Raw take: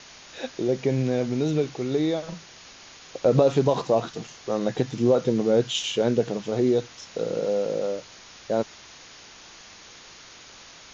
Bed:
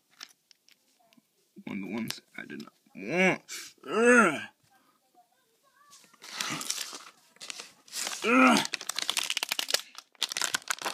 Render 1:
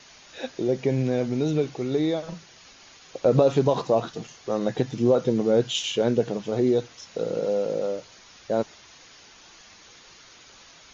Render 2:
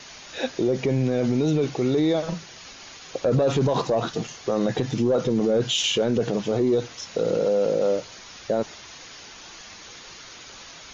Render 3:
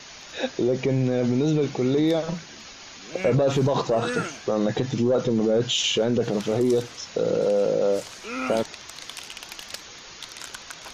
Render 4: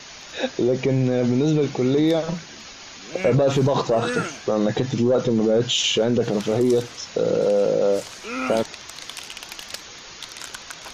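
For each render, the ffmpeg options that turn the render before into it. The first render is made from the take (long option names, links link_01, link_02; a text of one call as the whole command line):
ffmpeg -i in.wav -af "afftdn=noise_reduction=6:noise_floor=-47" out.wav
ffmpeg -i in.wav -af "acontrast=87,alimiter=limit=-14dB:level=0:latency=1:release=30" out.wav
ffmpeg -i in.wav -i bed.wav -filter_complex "[1:a]volume=-9.5dB[link_01];[0:a][link_01]amix=inputs=2:normalize=0" out.wav
ffmpeg -i in.wav -af "volume=2.5dB" out.wav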